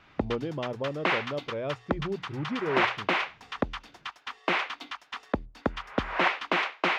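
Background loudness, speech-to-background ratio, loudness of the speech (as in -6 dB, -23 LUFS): -31.0 LUFS, -3.5 dB, -34.5 LUFS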